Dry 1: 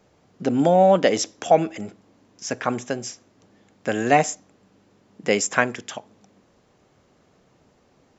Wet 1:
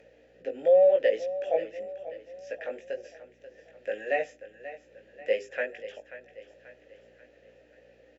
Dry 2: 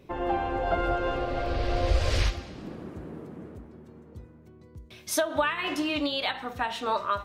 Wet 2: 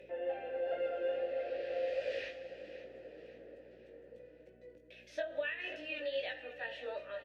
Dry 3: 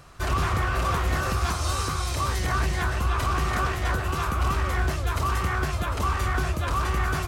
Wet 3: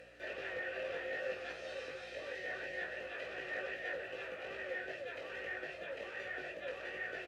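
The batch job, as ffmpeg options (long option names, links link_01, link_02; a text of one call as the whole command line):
ffmpeg -i in.wav -filter_complex "[0:a]aemphasis=mode=production:type=bsi,bandreject=frequency=57.76:width_type=h:width=4,bandreject=frequency=115.52:width_type=h:width=4,bandreject=frequency=173.28:width_type=h:width=4,bandreject=frequency=231.04:width_type=h:width=4,bandreject=frequency=288.8:width_type=h:width=4,bandreject=frequency=346.56:width_type=h:width=4,bandreject=frequency=404.32:width_type=h:width=4,acrossover=split=5700[link_01][link_02];[link_02]acompressor=threshold=-41dB:ratio=4:attack=1:release=60[link_03];[link_01][link_03]amix=inputs=2:normalize=0,highshelf=frequency=5800:gain=-9,acompressor=mode=upward:threshold=-36dB:ratio=2.5,aeval=exprs='val(0)+0.0126*(sin(2*PI*60*n/s)+sin(2*PI*2*60*n/s)/2+sin(2*PI*3*60*n/s)/3+sin(2*PI*4*60*n/s)/4+sin(2*PI*5*60*n/s)/5)':channel_layout=same,flanger=delay=17.5:depth=2.2:speed=2.4,asplit=3[link_04][link_05][link_06];[link_04]bandpass=frequency=530:width_type=q:width=8,volume=0dB[link_07];[link_05]bandpass=frequency=1840:width_type=q:width=8,volume=-6dB[link_08];[link_06]bandpass=frequency=2480:width_type=q:width=8,volume=-9dB[link_09];[link_07][link_08][link_09]amix=inputs=3:normalize=0,aecho=1:1:536|1072|1608|2144:0.2|0.0938|0.0441|0.0207,volume=3.5dB" out.wav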